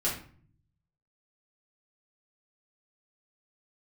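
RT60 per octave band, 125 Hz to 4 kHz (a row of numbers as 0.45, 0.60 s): 1.2, 0.85, 0.50, 0.45, 0.40, 0.35 s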